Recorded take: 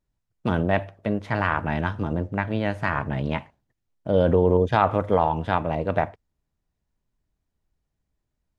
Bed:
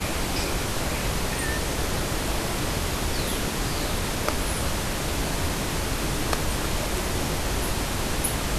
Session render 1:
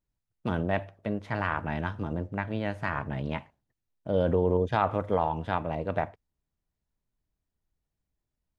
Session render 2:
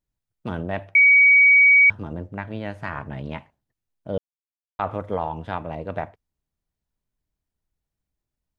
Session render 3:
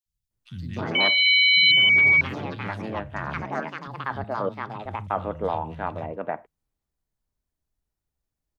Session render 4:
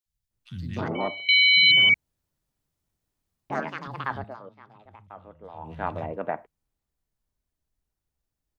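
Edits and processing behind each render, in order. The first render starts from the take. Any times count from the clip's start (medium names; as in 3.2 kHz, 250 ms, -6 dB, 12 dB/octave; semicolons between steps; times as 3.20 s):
trim -6 dB
0.95–1.90 s: bleep 2.26 kHz -10 dBFS; 4.18–4.79 s: mute
three bands offset in time highs, lows, mids 60/310 ms, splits 170/2700 Hz; ever faster or slower copies 236 ms, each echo +5 st, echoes 2
0.88–1.29 s: Savitzky-Golay filter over 65 samples; 1.94–3.50 s: room tone; 4.09–5.84 s: dip -18 dB, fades 0.30 s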